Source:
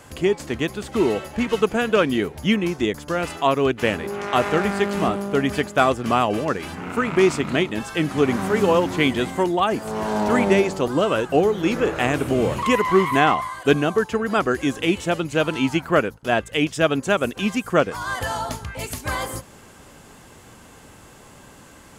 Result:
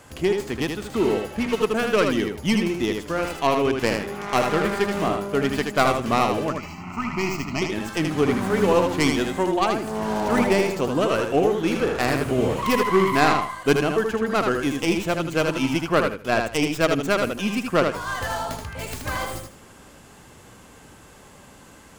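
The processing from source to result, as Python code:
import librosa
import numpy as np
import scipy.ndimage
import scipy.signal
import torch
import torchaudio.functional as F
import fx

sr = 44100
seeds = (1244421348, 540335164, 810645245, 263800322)

y = fx.tracing_dist(x, sr, depth_ms=0.18)
y = fx.fixed_phaser(y, sr, hz=2400.0, stages=8, at=(6.5, 7.62))
y = fx.echo_feedback(y, sr, ms=78, feedback_pct=20, wet_db=-5.0)
y = F.gain(torch.from_numpy(y), -2.5).numpy()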